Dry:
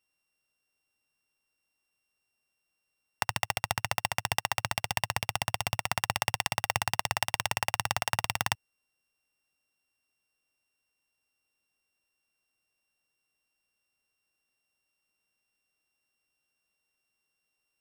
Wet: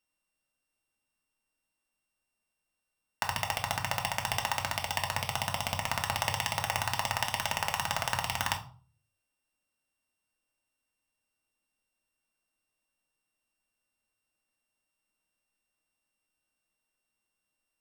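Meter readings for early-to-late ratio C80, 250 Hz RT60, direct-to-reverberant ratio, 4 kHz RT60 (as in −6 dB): 17.0 dB, 0.50 s, 2.0 dB, 0.30 s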